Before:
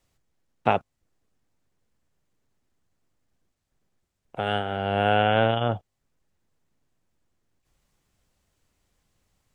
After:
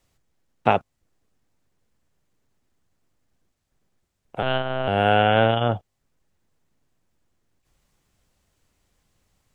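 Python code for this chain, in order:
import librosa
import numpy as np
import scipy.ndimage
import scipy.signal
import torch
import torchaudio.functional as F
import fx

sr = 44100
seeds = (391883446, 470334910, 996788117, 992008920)

y = fx.lpc_monotone(x, sr, seeds[0], pitch_hz=130.0, order=8, at=(4.42, 4.88))
y = y * 10.0 ** (3.0 / 20.0)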